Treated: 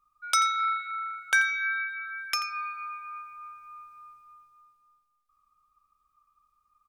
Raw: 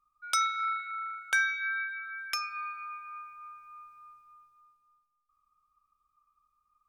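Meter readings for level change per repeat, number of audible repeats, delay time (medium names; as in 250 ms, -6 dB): no regular repeats, 1, 86 ms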